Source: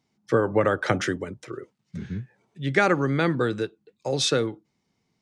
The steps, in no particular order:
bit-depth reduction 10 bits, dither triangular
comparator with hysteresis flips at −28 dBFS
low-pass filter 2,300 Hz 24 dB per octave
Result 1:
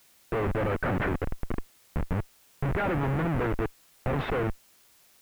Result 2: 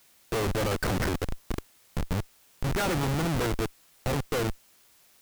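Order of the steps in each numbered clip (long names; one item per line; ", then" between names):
comparator with hysteresis, then low-pass filter, then bit-depth reduction
low-pass filter, then comparator with hysteresis, then bit-depth reduction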